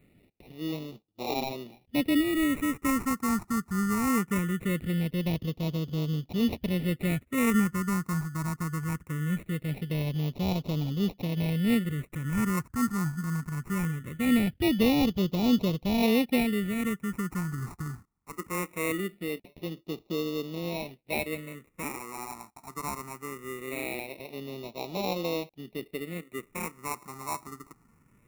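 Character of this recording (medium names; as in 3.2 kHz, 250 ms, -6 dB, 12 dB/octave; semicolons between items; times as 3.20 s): aliases and images of a low sample rate 1.6 kHz, jitter 0%; phasing stages 4, 0.21 Hz, lowest notch 530–1600 Hz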